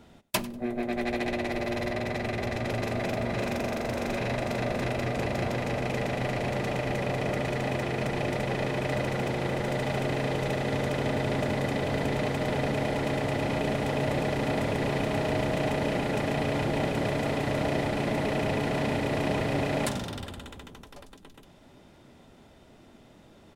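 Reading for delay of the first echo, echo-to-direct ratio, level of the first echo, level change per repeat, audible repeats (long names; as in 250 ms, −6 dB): 97 ms, −19.5 dB, −19.5 dB, −13.0 dB, 2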